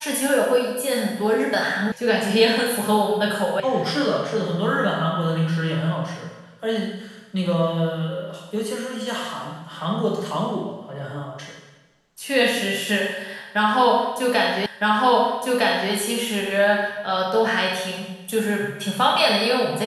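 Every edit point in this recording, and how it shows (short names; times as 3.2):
1.92 sound cut off
3.6 sound cut off
14.66 repeat of the last 1.26 s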